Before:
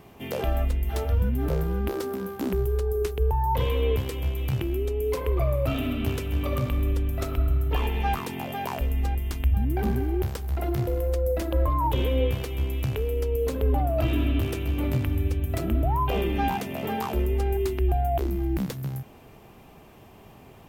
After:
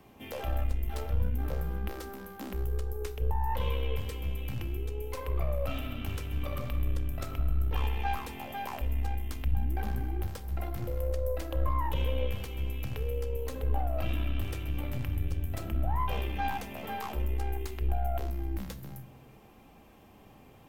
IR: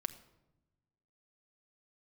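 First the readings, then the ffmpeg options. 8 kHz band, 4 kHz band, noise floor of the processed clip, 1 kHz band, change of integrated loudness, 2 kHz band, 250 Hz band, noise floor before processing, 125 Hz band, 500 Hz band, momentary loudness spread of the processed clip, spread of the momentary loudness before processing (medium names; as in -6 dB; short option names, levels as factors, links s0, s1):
-6.5 dB, -6.0 dB, -55 dBFS, -6.5 dB, -7.5 dB, -5.5 dB, -11.5 dB, -50 dBFS, -7.0 dB, -10.5 dB, 6 LU, 5 LU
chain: -filter_complex "[0:a]acrossover=split=150|500|7100[s0][s1][s2][s3];[s1]acompressor=threshold=0.00794:ratio=6[s4];[s0][s4][s2][s3]amix=inputs=4:normalize=0,aeval=exprs='(tanh(7.94*val(0)+0.55)-tanh(0.55))/7.94':c=same[s5];[1:a]atrim=start_sample=2205,asetrate=61740,aresample=44100[s6];[s5][s6]afir=irnorm=-1:irlink=0"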